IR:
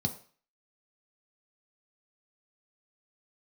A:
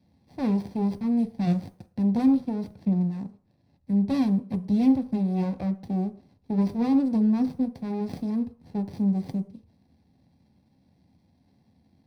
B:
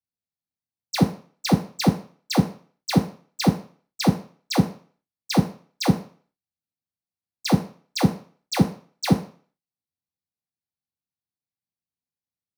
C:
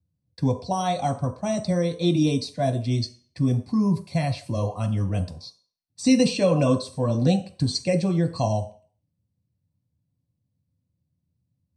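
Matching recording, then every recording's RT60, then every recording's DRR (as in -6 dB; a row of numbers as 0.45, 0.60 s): C; 0.45, 0.45, 0.45 s; 7.5, -1.0, 3.5 dB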